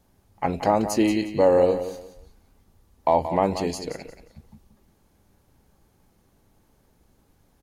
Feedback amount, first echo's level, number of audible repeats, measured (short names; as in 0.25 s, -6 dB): 26%, -11.0 dB, 3